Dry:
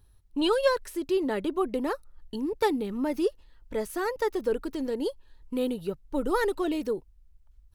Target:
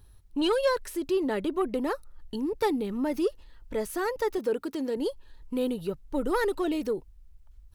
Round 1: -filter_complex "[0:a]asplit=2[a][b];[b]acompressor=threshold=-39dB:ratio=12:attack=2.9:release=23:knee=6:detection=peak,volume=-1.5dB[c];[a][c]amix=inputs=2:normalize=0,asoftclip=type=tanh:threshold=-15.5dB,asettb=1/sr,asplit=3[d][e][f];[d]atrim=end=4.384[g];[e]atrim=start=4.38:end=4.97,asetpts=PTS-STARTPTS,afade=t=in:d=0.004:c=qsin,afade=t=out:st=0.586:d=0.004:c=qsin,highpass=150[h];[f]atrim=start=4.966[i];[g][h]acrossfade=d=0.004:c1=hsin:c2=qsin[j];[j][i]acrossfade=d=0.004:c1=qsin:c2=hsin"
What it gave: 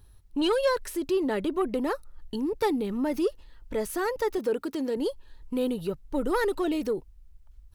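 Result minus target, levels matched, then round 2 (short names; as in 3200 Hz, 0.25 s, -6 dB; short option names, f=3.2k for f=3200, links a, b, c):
compressor: peak gain reduction -9.5 dB
-filter_complex "[0:a]asplit=2[a][b];[b]acompressor=threshold=-49.5dB:ratio=12:attack=2.9:release=23:knee=6:detection=peak,volume=-1.5dB[c];[a][c]amix=inputs=2:normalize=0,asoftclip=type=tanh:threshold=-15.5dB,asettb=1/sr,asplit=3[d][e][f];[d]atrim=end=4.384[g];[e]atrim=start=4.38:end=4.97,asetpts=PTS-STARTPTS,afade=t=in:d=0.004:c=qsin,afade=t=out:st=0.586:d=0.004:c=qsin,highpass=150[h];[f]atrim=start=4.966[i];[g][h]acrossfade=d=0.004:c1=hsin:c2=qsin[j];[j][i]acrossfade=d=0.004:c1=qsin:c2=hsin"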